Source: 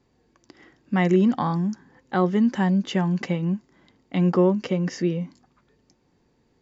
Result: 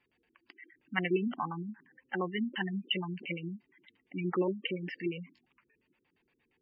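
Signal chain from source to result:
auto-filter low-pass square 8.6 Hz 350–2,600 Hz
tilt shelving filter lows −10 dB, about 930 Hz
gate on every frequency bin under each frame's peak −15 dB strong
level −8 dB

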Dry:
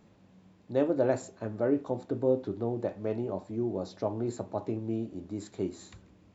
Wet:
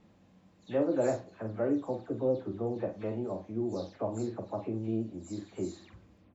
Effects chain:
every frequency bin delayed by itself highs early, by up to 172 ms
double-tracking delay 45 ms −7 dB
pitch vibrato 11 Hz 26 cents
level −2 dB

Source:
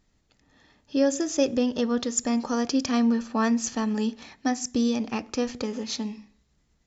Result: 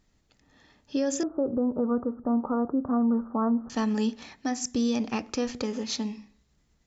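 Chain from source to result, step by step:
0:01.23–0:03.70: Butterworth low-pass 1,400 Hz 72 dB per octave
brickwall limiter −18.5 dBFS, peak gain reduction 6.5 dB

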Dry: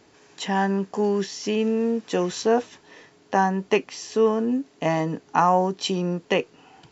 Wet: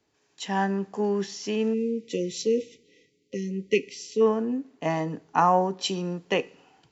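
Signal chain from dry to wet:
time-frequency box erased 0:01.74–0:04.21, 550–1,900 Hz
coupled-rooms reverb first 0.65 s, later 2.4 s, from −26 dB, DRR 18 dB
multiband upward and downward expander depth 40%
level −3.5 dB

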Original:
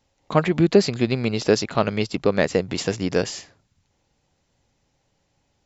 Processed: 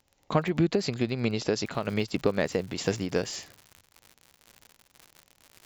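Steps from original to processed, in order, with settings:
downward compressor 4 to 1, threshold −19 dBFS, peak gain reduction 8.5 dB
surface crackle 15 per second −34 dBFS, from 0:01.66 140 per second
amplitude modulation by smooth noise, depth 60%

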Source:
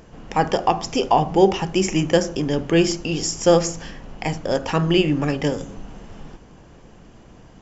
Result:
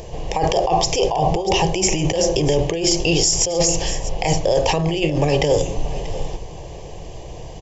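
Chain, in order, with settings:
compressor whose output falls as the input rises −24 dBFS, ratio −1
phaser with its sweep stopped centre 580 Hz, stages 4
single-tap delay 637 ms −17.5 dB
boost into a limiter +17 dB
level −6 dB

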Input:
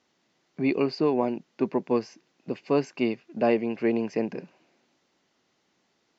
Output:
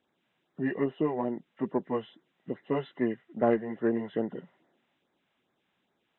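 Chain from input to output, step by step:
hearing-aid frequency compression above 1,100 Hz 1.5 to 1
auto-filter notch sine 2.4 Hz 270–3,000 Hz
harmonic generator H 3 −19 dB, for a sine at −10.5 dBFS

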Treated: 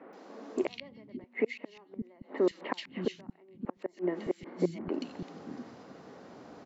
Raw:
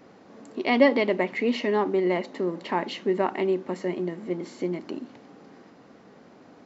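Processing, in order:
0:04.42–0:04.88: high-shelf EQ 3,300 Hz −12 dB
gate with flip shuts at −18 dBFS, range −35 dB
three-band delay without the direct sound mids, highs, lows 130/570 ms, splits 220/2,300 Hz
level +2.5 dB

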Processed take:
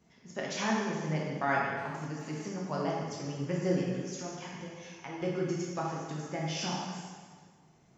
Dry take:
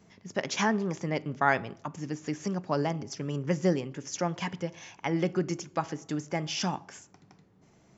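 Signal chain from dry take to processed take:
0:03.98–0:05.22: downward compressor 4 to 1, threshold −35 dBFS, peak gain reduction 10 dB
dense smooth reverb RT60 1.6 s, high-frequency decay 0.9×, DRR −4.5 dB
0:01.78–0:02.49: phone interference −44 dBFS
level −8.5 dB

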